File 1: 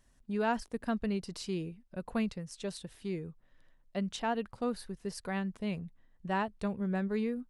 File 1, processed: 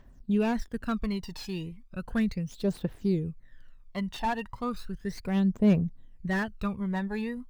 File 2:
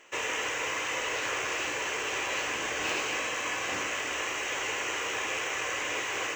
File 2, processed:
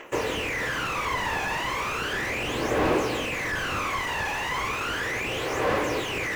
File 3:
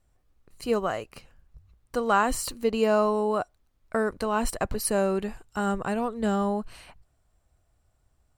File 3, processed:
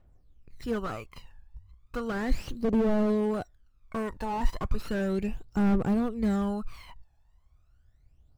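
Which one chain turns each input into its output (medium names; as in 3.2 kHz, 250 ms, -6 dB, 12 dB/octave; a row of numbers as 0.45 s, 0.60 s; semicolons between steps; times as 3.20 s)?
median filter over 5 samples; phaser 0.35 Hz, delay 1.2 ms, feedback 75%; slew-rate limiter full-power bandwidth 39 Hz; peak normalisation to -12 dBFS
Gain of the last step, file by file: +2.5 dB, +6.0 dB, -3.5 dB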